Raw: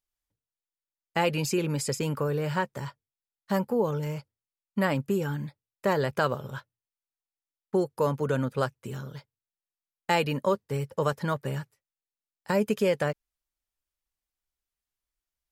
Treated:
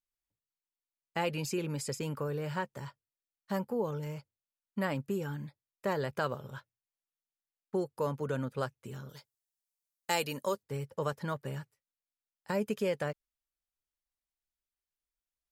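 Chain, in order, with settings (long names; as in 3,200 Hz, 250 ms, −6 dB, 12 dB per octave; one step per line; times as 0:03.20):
0:09.09–0:10.63: bass and treble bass −6 dB, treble +12 dB
level −7 dB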